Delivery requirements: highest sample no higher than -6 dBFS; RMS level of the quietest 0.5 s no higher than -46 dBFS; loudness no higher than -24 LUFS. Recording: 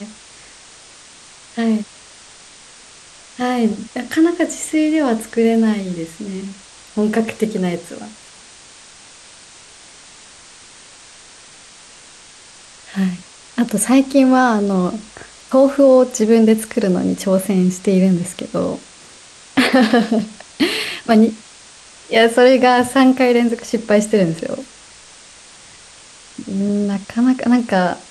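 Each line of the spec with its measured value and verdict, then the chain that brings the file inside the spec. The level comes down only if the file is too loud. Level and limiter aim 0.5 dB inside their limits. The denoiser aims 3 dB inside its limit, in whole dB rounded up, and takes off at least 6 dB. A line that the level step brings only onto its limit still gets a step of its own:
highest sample -2.5 dBFS: fail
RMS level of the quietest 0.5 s -42 dBFS: fail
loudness -16.0 LUFS: fail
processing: gain -8.5 dB

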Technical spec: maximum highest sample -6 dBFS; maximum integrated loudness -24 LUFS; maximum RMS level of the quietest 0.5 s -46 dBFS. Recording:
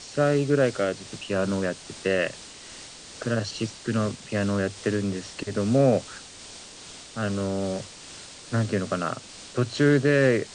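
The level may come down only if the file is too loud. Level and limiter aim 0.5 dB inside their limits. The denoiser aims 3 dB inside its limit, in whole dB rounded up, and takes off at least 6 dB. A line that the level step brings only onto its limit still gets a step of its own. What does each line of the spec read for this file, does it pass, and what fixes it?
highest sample -9.0 dBFS: OK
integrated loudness -25.5 LUFS: OK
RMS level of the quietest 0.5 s -44 dBFS: fail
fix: denoiser 6 dB, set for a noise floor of -44 dBFS

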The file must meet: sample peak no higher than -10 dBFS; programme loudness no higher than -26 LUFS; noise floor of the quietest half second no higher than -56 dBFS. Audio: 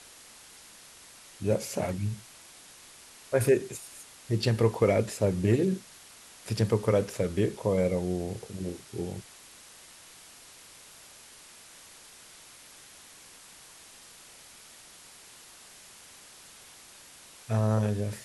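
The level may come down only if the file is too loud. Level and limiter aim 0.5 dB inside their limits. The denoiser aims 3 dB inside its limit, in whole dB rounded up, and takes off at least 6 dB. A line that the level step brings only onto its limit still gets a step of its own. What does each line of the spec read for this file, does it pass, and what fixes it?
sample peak -10.5 dBFS: OK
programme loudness -29.0 LUFS: OK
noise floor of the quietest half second -52 dBFS: fail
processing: denoiser 7 dB, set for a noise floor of -52 dBFS

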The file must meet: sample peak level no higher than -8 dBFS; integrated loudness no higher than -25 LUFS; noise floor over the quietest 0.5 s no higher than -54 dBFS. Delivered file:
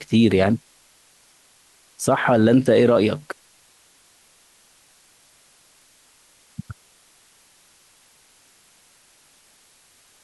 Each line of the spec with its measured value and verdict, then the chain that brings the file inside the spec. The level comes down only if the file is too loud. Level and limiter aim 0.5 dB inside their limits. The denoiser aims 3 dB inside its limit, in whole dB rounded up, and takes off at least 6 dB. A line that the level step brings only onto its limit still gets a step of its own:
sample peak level -6.0 dBFS: fail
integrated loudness -18.5 LUFS: fail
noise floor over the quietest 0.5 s -56 dBFS: OK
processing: gain -7 dB

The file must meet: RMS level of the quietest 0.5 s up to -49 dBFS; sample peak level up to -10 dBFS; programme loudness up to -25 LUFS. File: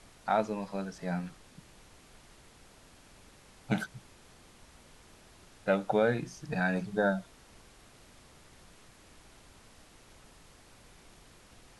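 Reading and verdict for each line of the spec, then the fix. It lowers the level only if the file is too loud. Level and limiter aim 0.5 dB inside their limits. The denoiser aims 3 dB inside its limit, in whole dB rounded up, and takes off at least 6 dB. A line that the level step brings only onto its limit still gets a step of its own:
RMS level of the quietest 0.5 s -57 dBFS: OK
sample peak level -14.0 dBFS: OK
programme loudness -32.5 LUFS: OK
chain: none

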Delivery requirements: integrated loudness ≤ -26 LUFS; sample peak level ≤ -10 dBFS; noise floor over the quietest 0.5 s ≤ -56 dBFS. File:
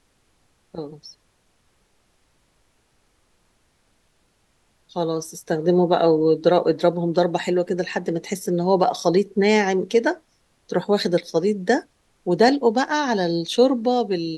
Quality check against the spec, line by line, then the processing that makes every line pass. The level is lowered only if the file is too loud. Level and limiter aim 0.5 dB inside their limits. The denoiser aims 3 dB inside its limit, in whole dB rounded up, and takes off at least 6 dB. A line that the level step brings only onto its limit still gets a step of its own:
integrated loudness -20.5 LUFS: fail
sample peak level -4.0 dBFS: fail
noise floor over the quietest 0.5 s -64 dBFS: OK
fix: gain -6 dB; limiter -10.5 dBFS

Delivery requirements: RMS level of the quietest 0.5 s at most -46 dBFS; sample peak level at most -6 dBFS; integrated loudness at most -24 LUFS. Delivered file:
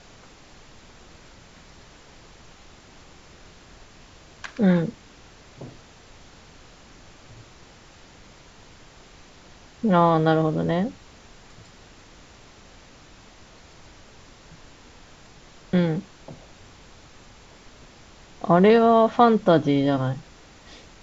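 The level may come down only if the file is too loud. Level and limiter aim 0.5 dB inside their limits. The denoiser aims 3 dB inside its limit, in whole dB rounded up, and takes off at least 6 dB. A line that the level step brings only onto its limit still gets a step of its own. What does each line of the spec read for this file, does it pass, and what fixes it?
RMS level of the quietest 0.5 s -49 dBFS: OK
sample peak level -5.0 dBFS: fail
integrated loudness -20.5 LUFS: fail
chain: gain -4 dB

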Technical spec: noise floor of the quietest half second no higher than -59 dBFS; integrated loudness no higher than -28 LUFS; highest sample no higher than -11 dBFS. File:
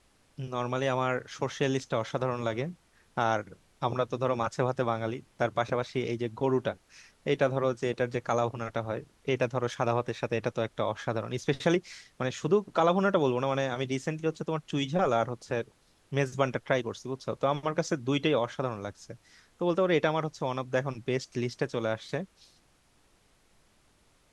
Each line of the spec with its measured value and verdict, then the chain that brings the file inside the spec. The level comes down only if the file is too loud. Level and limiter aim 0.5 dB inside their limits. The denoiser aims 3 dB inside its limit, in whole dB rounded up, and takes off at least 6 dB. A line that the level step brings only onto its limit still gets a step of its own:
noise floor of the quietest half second -65 dBFS: OK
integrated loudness -30.5 LUFS: OK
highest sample -10.0 dBFS: fail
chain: limiter -11.5 dBFS

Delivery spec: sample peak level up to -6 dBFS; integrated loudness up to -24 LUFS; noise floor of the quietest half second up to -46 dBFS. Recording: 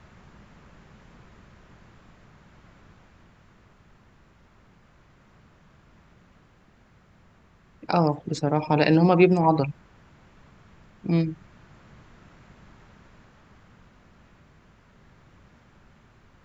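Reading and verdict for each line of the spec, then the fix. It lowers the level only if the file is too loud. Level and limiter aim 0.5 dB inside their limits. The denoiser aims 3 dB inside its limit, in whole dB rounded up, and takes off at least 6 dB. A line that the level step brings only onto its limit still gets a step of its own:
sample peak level -4.5 dBFS: fail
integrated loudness -22.5 LUFS: fail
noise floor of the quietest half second -58 dBFS: OK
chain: gain -2 dB

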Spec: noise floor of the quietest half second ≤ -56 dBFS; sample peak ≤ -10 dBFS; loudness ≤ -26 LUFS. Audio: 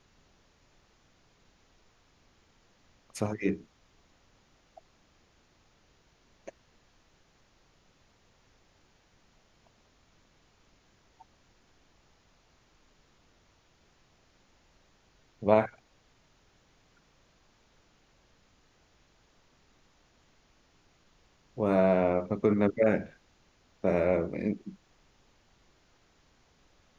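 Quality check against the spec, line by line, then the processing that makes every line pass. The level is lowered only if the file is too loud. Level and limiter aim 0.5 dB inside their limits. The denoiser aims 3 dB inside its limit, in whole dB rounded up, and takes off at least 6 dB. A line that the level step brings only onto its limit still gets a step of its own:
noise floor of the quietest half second -66 dBFS: OK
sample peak -8.0 dBFS: fail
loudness -28.5 LUFS: OK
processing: limiter -10.5 dBFS

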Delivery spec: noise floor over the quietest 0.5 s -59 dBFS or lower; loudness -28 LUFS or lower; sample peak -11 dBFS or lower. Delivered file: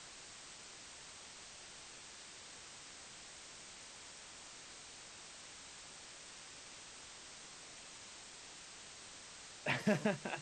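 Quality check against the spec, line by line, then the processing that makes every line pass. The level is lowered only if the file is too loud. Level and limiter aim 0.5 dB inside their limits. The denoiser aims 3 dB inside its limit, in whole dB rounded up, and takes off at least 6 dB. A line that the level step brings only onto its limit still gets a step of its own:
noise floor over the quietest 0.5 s -54 dBFS: fail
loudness -46.5 LUFS: OK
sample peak -19.5 dBFS: OK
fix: denoiser 8 dB, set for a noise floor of -54 dBFS

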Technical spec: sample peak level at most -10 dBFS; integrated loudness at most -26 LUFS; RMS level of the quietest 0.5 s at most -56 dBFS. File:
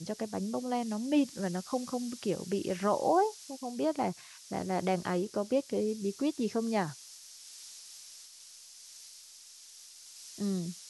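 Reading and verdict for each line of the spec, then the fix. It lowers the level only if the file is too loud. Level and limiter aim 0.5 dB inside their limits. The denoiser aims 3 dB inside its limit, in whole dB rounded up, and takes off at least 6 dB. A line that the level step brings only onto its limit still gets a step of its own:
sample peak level -16.0 dBFS: OK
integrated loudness -32.5 LUFS: OK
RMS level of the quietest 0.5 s -53 dBFS: fail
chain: denoiser 6 dB, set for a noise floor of -53 dBFS

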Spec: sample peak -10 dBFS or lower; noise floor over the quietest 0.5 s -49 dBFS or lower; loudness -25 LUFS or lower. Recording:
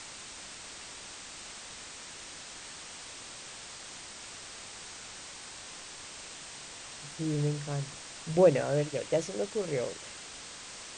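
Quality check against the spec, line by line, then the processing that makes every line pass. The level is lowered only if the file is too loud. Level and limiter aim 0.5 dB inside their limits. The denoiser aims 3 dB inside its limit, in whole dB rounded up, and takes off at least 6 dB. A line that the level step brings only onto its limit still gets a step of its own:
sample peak -11.0 dBFS: OK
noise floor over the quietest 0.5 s -46 dBFS: fail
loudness -35.5 LUFS: OK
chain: denoiser 6 dB, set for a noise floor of -46 dBFS

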